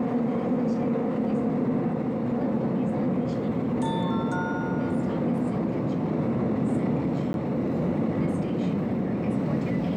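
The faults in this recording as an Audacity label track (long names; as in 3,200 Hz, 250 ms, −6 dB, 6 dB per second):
7.330000	7.340000	drop-out 11 ms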